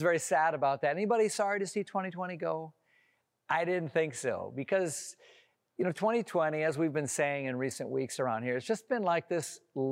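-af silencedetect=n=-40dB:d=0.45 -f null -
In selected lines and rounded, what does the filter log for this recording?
silence_start: 2.66
silence_end: 3.49 | silence_duration: 0.83
silence_start: 5.11
silence_end: 5.79 | silence_duration: 0.68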